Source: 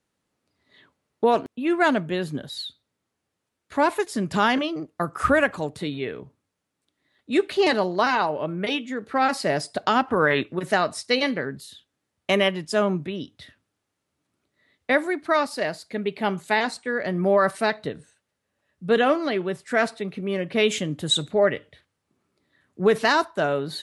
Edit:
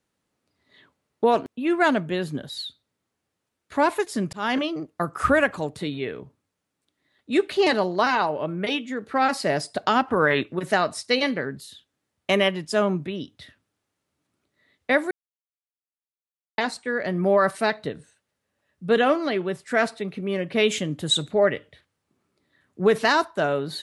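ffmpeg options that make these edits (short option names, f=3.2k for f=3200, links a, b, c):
-filter_complex "[0:a]asplit=4[a][b][c][d];[a]atrim=end=4.33,asetpts=PTS-STARTPTS,afade=t=out:st=4.326:d=0.004:c=hsin[e];[b]atrim=start=4.33:end=15.11,asetpts=PTS-STARTPTS,afade=t=in:d=0.25,afade=t=out:st=10.776:d=0.004:c=hsin[f];[c]atrim=start=15.11:end=16.58,asetpts=PTS-STARTPTS,volume=0[g];[d]atrim=start=16.58,asetpts=PTS-STARTPTS,afade=t=in:d=0.004:c=hsin[h];[e][f][g][h]concat=n=4:v=0:a=1"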